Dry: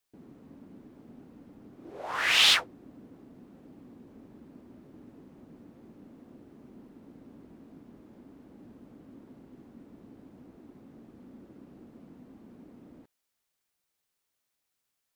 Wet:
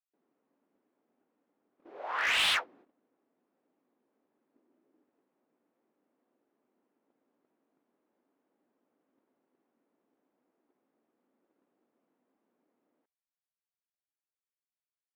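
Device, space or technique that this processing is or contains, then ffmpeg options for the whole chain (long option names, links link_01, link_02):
walkie-talkie: -filter_complex "[0:a]highpass=510,lowpass=2800,asoftclip=type=hard:threshold=-23.5dB,agate=range=-18dB:threshold=-56dB:ratio=16:detection=peak,asettb=1/sr,asplit=3[link_01][link_02][link_03];[link_01]atrim=end=4.544[link_04];[link_02]atrim=start=4.54:end=5.04,asetpts=PTS-STARTPTS,afade=type=in:duration=0.004:curve=qsin,afade=type=out:start_time=0.496:duration=0.004:curve=qsin,equalizer=frequency=310:width_type=o:width=1.1:gain=8[link_05];[link_03]atrim=start=5.036[link_06];[link_04][link_05]acrossfade=duration=0.004:curve1=hsin:curve2=qsin[link_07];[link_07][link_06]acrossfade=duration=0.004:curve1=qsin:curve2=hsin"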